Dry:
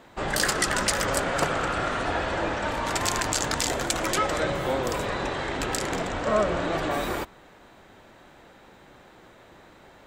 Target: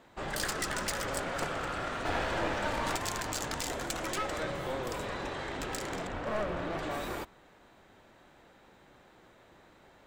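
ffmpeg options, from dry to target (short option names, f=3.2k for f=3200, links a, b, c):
-filter_complex "[0:a]asettb=1/sr,asplit=3[a][b][c];[a]atrim=end=2.054[d];[b]atrim=start=2.05:end=2.96,asetpts=PTS-STARTPTS,afade=t=in:d=0.004:c=qsin,afade=t=out:st=0.906:d=0.004:c=qsin,acontrast=29[e];[c]atrim=start=2.956[f];[d][e]acrossfade=d=0.004:c1=hsin:c2=qsin[g];[g][f]acrossfade=d=0.004:c1=qsin:c2=hsin,asettb=1/sr,asplit=3[h][i][j];[h]atrim=end=6.074[k];[i]atrim=start=6.07:end=6.79,asetpts=PTS-STARTPTS,afade=t=in:d=0.004:c=qsin,afade=t=out:st=0.716:d=0.004:c=qsin,bass=f=250:g=2,treble=f=4k:g=-9[l];[j]atrim=start=6.786[m];[k][l]acrossfade=d=0.004:c1=hsin:c2=qsin[n];[n][m]acrossfade=d=0.004:c1=qsin:c2=hsin,aeval=exprs='clip(val(0),-1,0.0473)':c=same,volume=-7.5dB"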